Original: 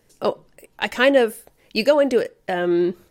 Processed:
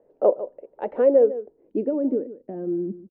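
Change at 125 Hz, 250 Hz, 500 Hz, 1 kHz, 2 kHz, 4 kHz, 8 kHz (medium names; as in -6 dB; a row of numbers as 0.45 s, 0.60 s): no reading, -4.0 dB, -1.5 dB, -8.5 dB, under -20 dB, under -35 dB, under -40 dB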